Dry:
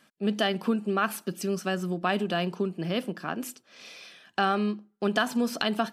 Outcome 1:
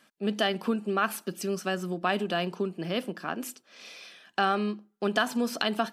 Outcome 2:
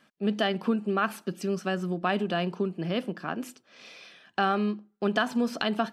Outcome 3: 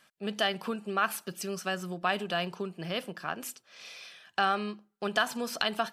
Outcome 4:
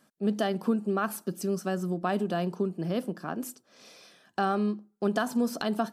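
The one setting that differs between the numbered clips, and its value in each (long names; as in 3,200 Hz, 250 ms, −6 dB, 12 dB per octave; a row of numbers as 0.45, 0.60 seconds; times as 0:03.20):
parametric band, centre frequency: 84, 15,000, 260, 2,600 Hertz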